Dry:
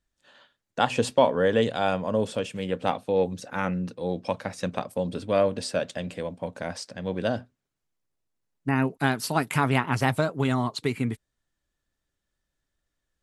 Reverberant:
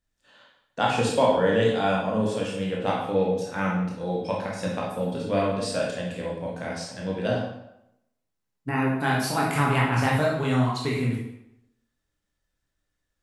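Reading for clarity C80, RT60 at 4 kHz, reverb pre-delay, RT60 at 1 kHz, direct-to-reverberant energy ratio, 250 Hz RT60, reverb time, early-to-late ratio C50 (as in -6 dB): 6.0 dB, 0.65 s, 15 ms, 0.85 s, -3.5 dB, 0.75 s, 0.80 s, 2.0 dB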